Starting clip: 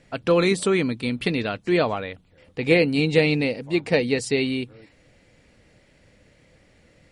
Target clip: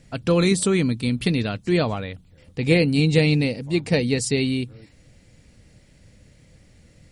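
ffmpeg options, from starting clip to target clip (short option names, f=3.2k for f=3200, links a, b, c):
-af "bass=f=250:g=11,treble=f=4k:g=10,volume=-3dB"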